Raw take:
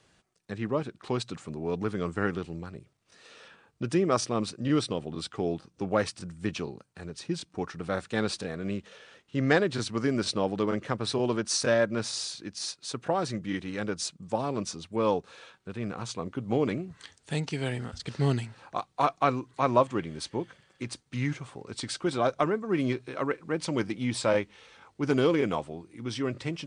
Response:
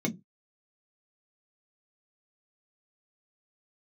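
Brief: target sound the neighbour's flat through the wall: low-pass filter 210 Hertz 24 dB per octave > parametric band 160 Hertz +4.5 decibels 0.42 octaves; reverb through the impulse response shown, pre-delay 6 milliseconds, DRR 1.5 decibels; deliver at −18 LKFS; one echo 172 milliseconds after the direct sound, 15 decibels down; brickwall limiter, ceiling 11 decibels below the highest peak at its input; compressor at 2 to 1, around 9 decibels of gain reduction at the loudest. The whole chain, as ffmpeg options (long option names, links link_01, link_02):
-filter_complex "[0:a]acompressor=threshold=-34dB:ratio=2,alimiter=level_in=4dB:limit=-24dB:level=0:latency=1,volume=-4dB,aecho=1:1:172:0.178,asplit=2[link_01][link_02];[1:a]atrim=start_sample=2205,adelay=6[link_03];[link_02][link_03]afir=irnorm=-1:irlink=0,volume=-7.5dB[link_04];[link_01][link_04]amix=inputs=2:normalize=0,lowpass=frequency=210:width=0.5412,lowpass=frequency=210:width=1.3066,equalizer=frequency=160:width_type=o:width=0.42:gain=4.5,volume=13.5dB"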